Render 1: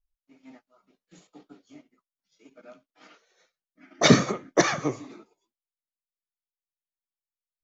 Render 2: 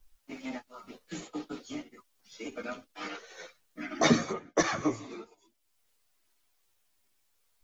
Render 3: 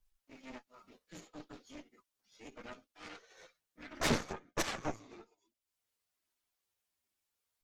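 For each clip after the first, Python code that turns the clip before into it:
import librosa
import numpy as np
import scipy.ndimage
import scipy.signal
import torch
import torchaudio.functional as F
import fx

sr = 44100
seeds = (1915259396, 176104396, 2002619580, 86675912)

y1 = fx.chorus_voices(x, sr, voices=6, hz=0.33, base_ms=11, depth_ms=2.2, mix_pct=50)
y1 = fx.band_squash(y1, sr, depth_pct=70)
y1 = F.gain(torch.from_numpy(y1), 2.5).numpy()
y2 = fx.cheby_harmonics(y1, sr, harmonics=(3, 4, 8), levels_db=(-15, -17, -17), full_scale_db=-10.0)
y2 = fx.transient(y2, sr, attack_db=-6, sustain_db=-2)
y2 = F.gain(torch.from_numpy(y2), -4.0).numpy()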